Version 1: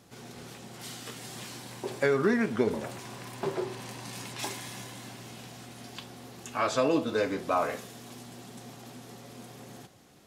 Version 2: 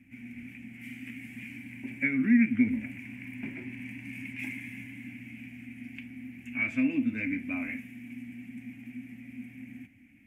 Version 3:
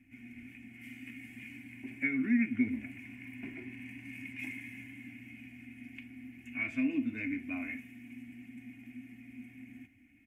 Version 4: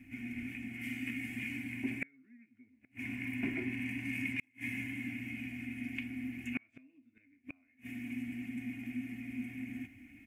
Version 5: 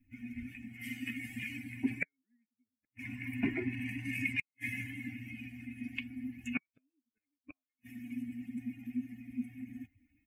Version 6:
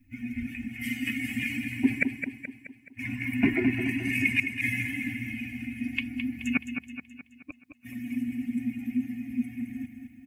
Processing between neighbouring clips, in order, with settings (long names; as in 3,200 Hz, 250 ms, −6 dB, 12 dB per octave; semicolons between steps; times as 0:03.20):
drawn EQ curve 110 Hz 0 dB, 160 Hz −10 dB, 260 Hz +11 dB, 400 Hz −26 dB, 680 Hz −20 dB, 1,200 Hz −25 dB, 2,300 Hz +12 dB, 3,900 Hz −30 dB, 13,000 Hz −12 dB
comb filter 2.8 ms, depth 49%; level −5 dB
gate with flip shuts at −31 dBFS, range −39 dB; level +8 dB
spectral dynamics exaggerated over time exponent 2; level +7 dB
repeating echo 213 ms, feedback 50%, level −7.5 dB; level +9 dB